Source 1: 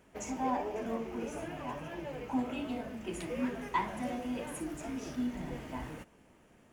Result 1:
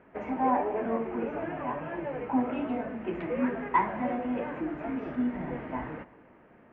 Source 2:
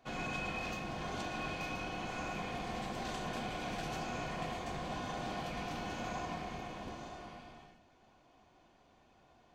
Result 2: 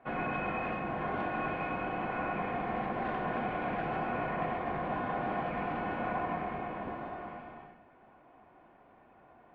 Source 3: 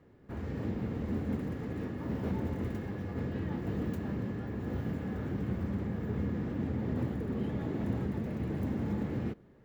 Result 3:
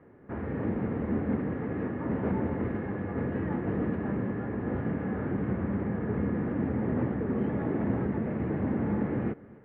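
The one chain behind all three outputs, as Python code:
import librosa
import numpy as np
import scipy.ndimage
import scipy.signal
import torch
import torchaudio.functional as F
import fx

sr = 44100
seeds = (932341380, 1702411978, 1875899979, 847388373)

p1 = scipy.signal.sosfilt(scipy.signal.butter(4, 2100.0, 'lowpass', fs=sr, output='sos'), x)
p2 = fx.low_shelf(p1, sr, hz=120.0, db=-11.0)
p3 = p2 + fx.echo_single(p2, sr, ms=262, db=-21.5, dry=0)
y = F.gain(torch.from_numpy(p3), 7.5).numpy()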